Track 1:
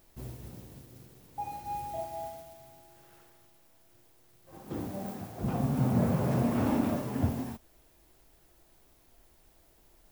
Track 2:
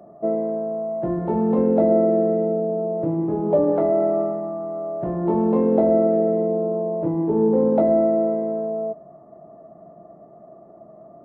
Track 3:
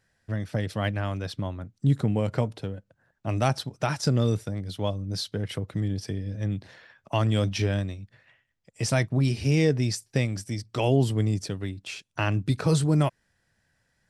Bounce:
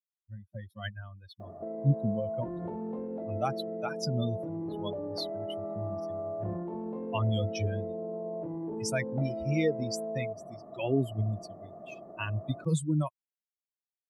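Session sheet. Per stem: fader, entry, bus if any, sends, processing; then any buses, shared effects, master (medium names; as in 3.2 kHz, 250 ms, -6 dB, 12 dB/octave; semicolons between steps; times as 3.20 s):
mute
-1.0 dB, 1.40 s, no send, band-stop 1.3 kHz, Q 29; compression, threshold -28 dBFS, peak gain reduction 14 dB; peak limiter -29 dBFS, peak gain reduction 10.5 dB
-0.5 dB, 0.00 s, no send, expander on every frequency bin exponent 3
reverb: none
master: none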